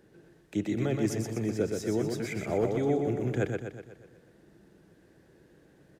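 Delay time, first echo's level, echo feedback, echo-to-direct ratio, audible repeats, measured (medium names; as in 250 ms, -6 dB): 123 ms, -4.5 dB, 52%, -3.0 dB, 6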